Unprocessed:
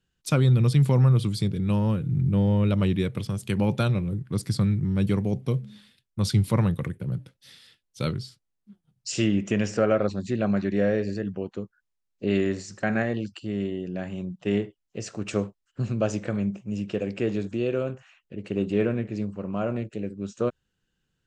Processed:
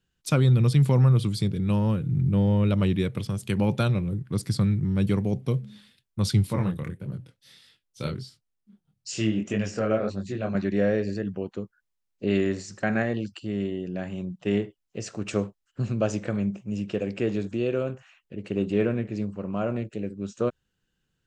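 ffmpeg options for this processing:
-filter_complex "[0:a]asettb=1/sr,asplit=3[a][b][c];[a]atrim=end=6.474[d];[b]atrim=start=6.47:end=10.55,asetpts=PTS-STARTPTS,afade=t=in:d=0.004:c=qsin,afade=t=out:st=4.076:d=0.004:c=qsin,flanger=delay=20:depth=7.7:speed=1.6[e];[c]atrim=start=10.546[f];[d][e]acrossfade=d=0.004:c1=hsin:c2=qsin[g];[g][f]acrossfade=d=0.004:c1=qsin:c2=hsin"

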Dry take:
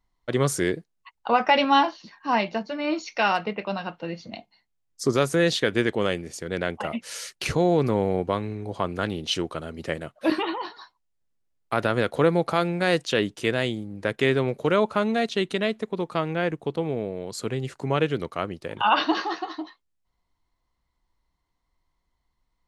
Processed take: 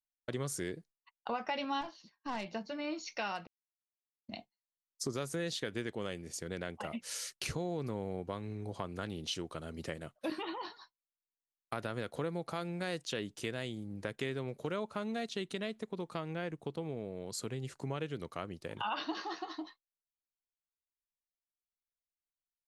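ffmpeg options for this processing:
-filter_complex "[0:a]asettb=1/sr,asplit=3[a][b][c];[a]atrim=end=1.814[d];[b]atrim=start=1.81:end=2.46,asetpts=PTS-STARTPTS,afade=t=in:d=0.004:c=qsin,afade=t=out:st=0.646:d=0.004:c=qsin,aeval=exprs='(tanh(8.91*val(0)+0.45)-tanh(0.45))/8.91':c=same[e];[c]atrim=start=2.456[f];[d][e]acrossfade=d=0.004:c1=hsin:c2=qsin[g];[g][f]acrossfade=d=0.004:c1=qsin:c2=hsin,asplit=3[h][i][j];[h]atrim=end=3.47,asetpts=PTS-STARTPTS,afade=t=out:st=3.466:d=0.004:c=hsin[k];[i]atrim=start=3.47:end=4.28,asetpts=PTS-STARTPTS,volume=0[l];[j]atrim=start=4.28,asetpts=PTS-STARTPTS,afade=t=in:d=0.004:c=hsin[m];[k][l][m]concat=n=3:v=0:a=1,agate=range=-33dB:threshold=-38dB:ratio=3:detection=peak,bass=f=250:g=3,treble=f=4k:g=6,acompressor=threshold=-31dB:ratio=2.5,volume=-7dB"

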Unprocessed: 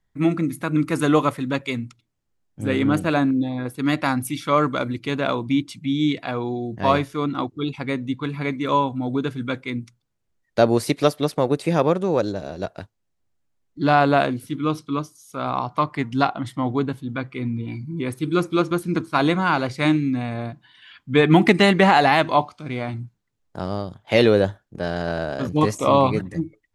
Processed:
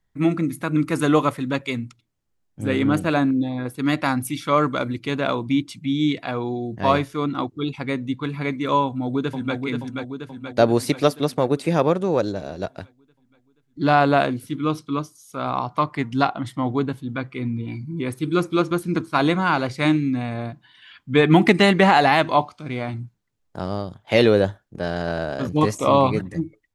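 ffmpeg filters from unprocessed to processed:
-filter_complex "[0:a]asplit=2[a][b];[b]afade=t=in:st=8.85:d=0.01,afade=t=out:st=9.56:d=0.01,aecho=0:1:480|960|1440|1920|2400|2880|3360|3840|4320:0.595662|0.357397|0.214438|0.128663|0.0771978|0.0463187|0.0277912|0.0166747|0.0100048[c];[a][c]amix=inputs=2:normalize=0"

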